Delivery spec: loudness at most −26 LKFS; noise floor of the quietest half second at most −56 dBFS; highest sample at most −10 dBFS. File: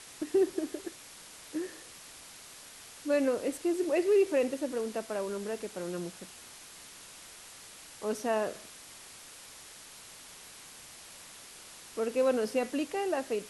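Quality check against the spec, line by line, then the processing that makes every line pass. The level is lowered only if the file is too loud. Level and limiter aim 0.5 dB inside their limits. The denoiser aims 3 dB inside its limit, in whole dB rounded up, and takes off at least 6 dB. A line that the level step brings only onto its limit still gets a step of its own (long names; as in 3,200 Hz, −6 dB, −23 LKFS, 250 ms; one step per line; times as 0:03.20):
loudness −32.0 LKFS: in spec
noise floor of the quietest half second −50 dBFS: out of spec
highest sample −17.0 dBFS: in spec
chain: broadband denoise 9 dB, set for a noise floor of −50 dBFS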